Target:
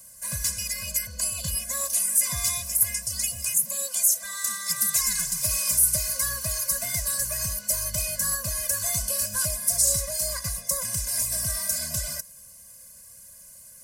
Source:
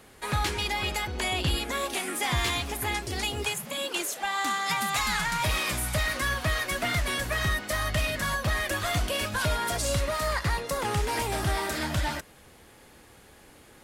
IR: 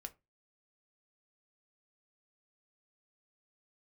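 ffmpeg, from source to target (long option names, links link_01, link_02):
-af "aexciter=amount=12.6:drive=4.6:freq=5000,afftfilt=real='re*eq(mod(floor(b*sr/1024/240),2),0)':imag='im*eq(mod(floor(b*sr/1024/240),2),0)':win_size=1024:overlap=0.75,volume=-6dB"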